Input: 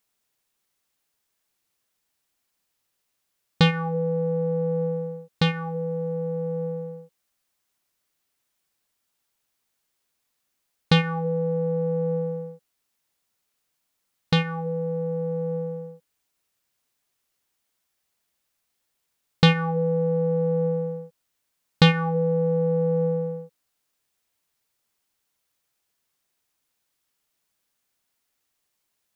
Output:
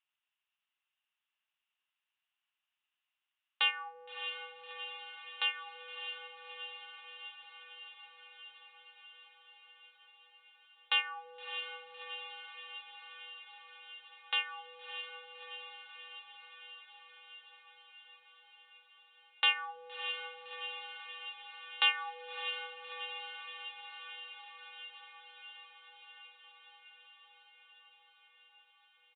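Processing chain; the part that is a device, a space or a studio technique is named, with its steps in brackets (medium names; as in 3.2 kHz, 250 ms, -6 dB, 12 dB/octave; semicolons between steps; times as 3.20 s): musical greeting card (resampled via 8 kHz; high-pass 870 Hz 24 dB/octave; peaking EQ 2.8 kHz +11 dB 0.22 oct); echo that smears into a reverb 632 ms, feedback 75%, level -8.5 dB; trim -8.5 dB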